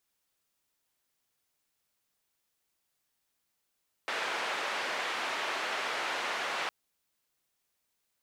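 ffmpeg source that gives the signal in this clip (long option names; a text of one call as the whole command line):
ffmpeg -f lavfi -i "anoisesrc=color=white:duration=2.61:sample_rate=44100:seed=1,highpass=frequency=500,lowpass=frequency=2200,volume=-18.5dB" out.wav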